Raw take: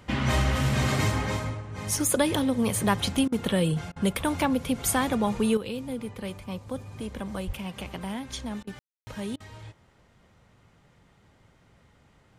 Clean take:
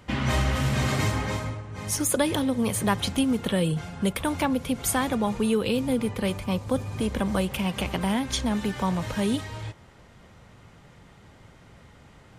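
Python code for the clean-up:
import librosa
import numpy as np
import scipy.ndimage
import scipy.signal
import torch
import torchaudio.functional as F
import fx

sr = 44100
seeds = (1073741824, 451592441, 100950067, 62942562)

y = fx.fix_deplosive(x, sr, at_s=(7.46,))
y = fx.fix_ambience(y, sr, seeds[0], print_start_s=9.73, print_end_s=10.23, start_s=8.79, end_s=9.07)
y = fx.fix_interpolate(y, sr, at_s=(3.28, 3.92, 8.63, 9.36), length_ms=41.0)
y = fx.gain(y, sr, db=fx.steps((0.0, 0.0), (5.57, 8.5)))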